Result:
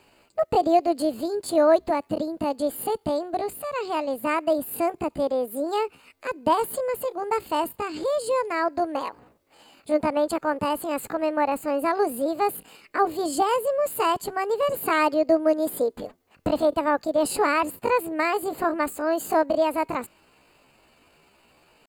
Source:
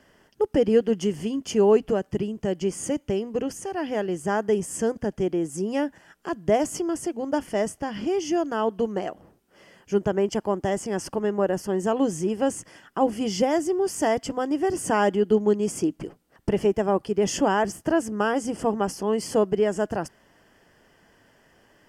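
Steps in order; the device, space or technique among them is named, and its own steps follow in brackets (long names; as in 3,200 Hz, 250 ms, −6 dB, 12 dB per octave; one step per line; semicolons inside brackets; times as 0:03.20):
chipmunk voice (pitch shifter +7 semitones)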